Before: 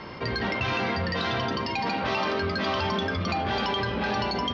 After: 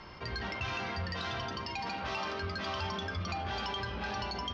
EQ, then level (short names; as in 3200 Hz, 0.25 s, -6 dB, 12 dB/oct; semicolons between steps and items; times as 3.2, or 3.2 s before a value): ten-band EQ 125 Hz -8 dB, 250 Hz -11 dB, 500 Hz -10 dB, 1000 Hz -5 dB, 2000 Hz -7 dB, 4000 Hz -7 dB; 0.0 dB